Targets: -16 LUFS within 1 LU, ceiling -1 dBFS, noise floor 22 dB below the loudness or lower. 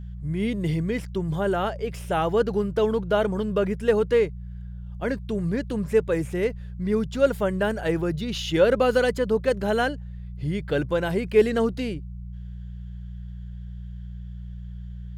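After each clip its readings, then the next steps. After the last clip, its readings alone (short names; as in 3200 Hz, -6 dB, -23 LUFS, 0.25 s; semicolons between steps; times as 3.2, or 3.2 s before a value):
hum 60 Hz; harmonics up to 180 Hz; hum level -33 dBFS; loudness -24.5 LUFS; peak -6.5 dBFS; loudness target -16.0 LUFS
-> de-hum 60 Hz, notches 3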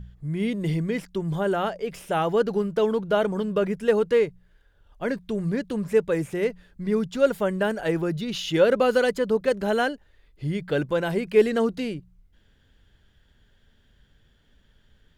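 hum none; loudness -25.0 LUFS; peak -7.0 dBFS; loudness target -16.0 LUFS
-> gain +9 dB; limiter -1 dBFS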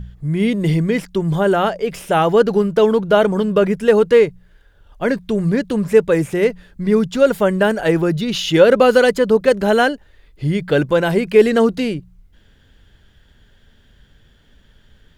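loudness -16.0 LUFS; peak -1.0 dBFS; noise floor -53 dBFS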